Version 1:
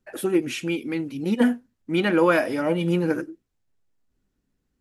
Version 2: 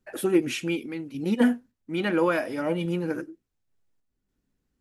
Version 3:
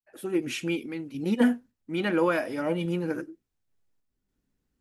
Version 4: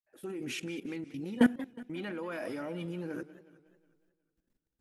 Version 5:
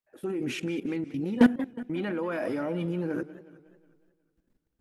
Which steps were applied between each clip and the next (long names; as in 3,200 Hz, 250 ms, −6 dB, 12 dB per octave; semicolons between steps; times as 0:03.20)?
sample-and-hold tremolo
fade in at the beginning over 0.62 s; level −1 dB
output level in coarse steps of 19 dB; feedback echo with a swinging delay time 182 ms, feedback 52%, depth 176 cents, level −16.5 dB
high-shelf EQ 2,300 Hz −9 dB; in parallel at −7.5 dB: wave folding −29.5 dBFS; on the sum: level +5 dB